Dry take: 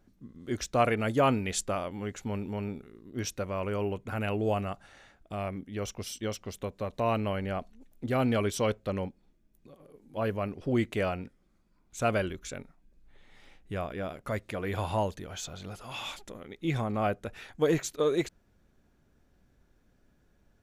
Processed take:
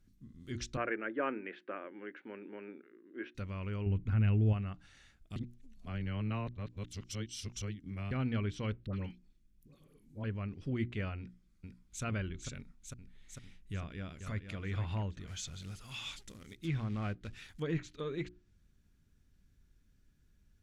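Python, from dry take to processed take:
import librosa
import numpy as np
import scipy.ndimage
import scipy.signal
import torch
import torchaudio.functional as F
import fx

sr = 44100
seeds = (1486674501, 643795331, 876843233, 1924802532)

y = fx.cabinet(x, sr, low_hz=300.0, low_slope=24, high_hz=2400.0, hz=(340.0, 550.0, 1600.0), db=(9, 7, 9), at=(0.77, 3.35))
y = fx.low_shelf(y, sr, hz=210.0, db=11.5, at=(3.86, 4.53))
y = fx.dispersion(y, sr, late='highs', ms=78.0, hz=1200.0, at=(8.86, 10.24))
y = fx.echo_throw(y, sr, start_s=11.18, length_s=0.85, ms=450, feedback_pct=75, wet_db=-3.5)
y = fx.echo_throw(y, sr, start_s=13.73, length_s=0.82, ms=470, feedback_pct=30, wet_db=-8.0)
y = fx.quant_float(y, sr, bits=2, at=(15.27, 17.6))
y = fx.edit(y, sr, fx.reverse_span(start_s=5.36, length_s=2.75), tone=tone)
y = fx.hum_notches(y, sr, base_hz=60, count=6)
y = fx.env_lowpass_down(y, sr, base_hz=2400.0, full_db=-27.0)
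y = fx.tone_stack(y, sr, knobs='6-0-2')
y = y * 10.0 ** (13.0 / 20.0)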